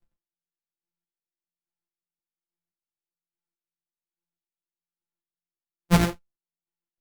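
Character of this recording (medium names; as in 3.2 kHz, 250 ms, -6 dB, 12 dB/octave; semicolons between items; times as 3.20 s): a buzz of ramps at a fixed pitch in blocks of 256 samples; chopped level 1.2 Hz, depth 60%, duty 25%; a shimmering, thickened sound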